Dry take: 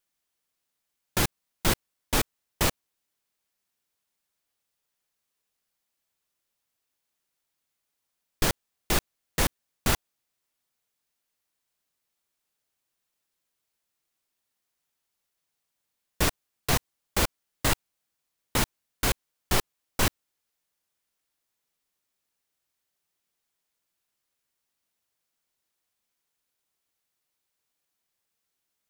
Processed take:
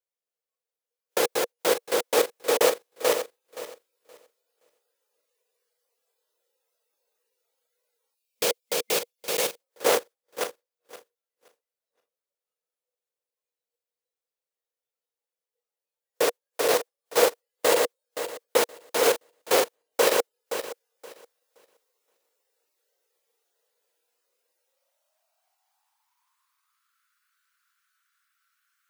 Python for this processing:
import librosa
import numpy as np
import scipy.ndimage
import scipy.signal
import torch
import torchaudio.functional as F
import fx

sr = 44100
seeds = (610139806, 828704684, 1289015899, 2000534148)

y = fx.reverse_delay_fb(x, sr, ms=261, feedback_pct=41, wet_db=-2.5)
y = fx.spec_box(y, sr, start_s=8.15, length_s=1.44, low_hz=220.0, high_hz=2100.0, gain_db=-7)
y = fx.rider(y, sr, range_db=3, speed_s=2.0)
y = fx.filter_sweep_highpass(y, sr, from_hz=480.0, to_hz=1400.0, start_s=24.56, end_s=27.06, q=7.3)
y = fx.noise_reduce_blind(y, sr, reduce_db=13)